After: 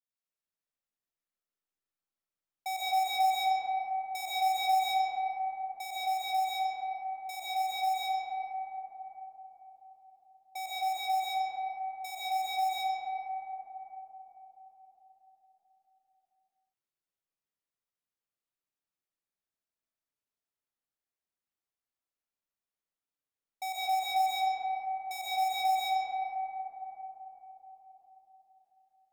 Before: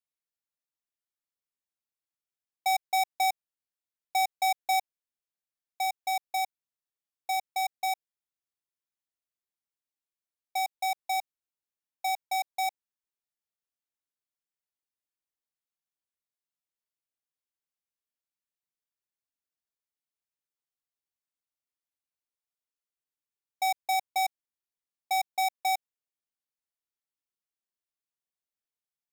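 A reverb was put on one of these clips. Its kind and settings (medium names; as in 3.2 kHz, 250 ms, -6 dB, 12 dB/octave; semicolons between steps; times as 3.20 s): algorithmic reverb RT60 4.7 s, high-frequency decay 0.25×, pre-delay 85 ms, DRR -9.5 dB; trim -9.5 dB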